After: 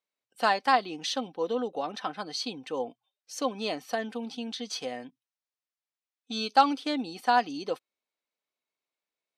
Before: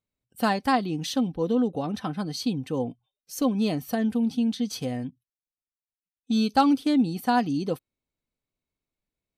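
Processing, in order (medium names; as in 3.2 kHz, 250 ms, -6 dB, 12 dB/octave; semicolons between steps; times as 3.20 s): band-pass 550–6200 Hz; trim +2 dB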